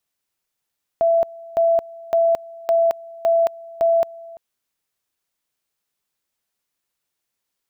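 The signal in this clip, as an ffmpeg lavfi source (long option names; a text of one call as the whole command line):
ffmpeg -f lavfi -i "aevalsrc='pow(10,(-13-22*gte(mod(t,0.56),0.22))/20)*sin(2*PI*668*t)':duration=3.36:sample_rate=44100" out.wav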